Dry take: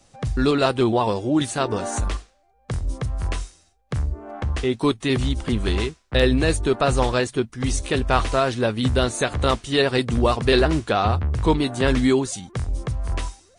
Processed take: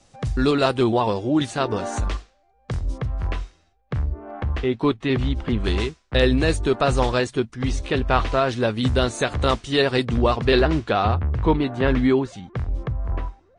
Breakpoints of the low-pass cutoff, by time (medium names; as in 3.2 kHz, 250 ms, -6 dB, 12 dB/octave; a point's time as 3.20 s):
9 kHz
from 1.00 s 5.8 kHz
from 2.98 s 3.1 kHz
from 5.64 s 7.2 kHz
from 7.55 s 4.1 kHz
from 8.49 s 7.1 kHz
from 10.05 s 4.4 kHz
from 11.14 s 2.6 kHz
from 12.88 s 1.4 kHz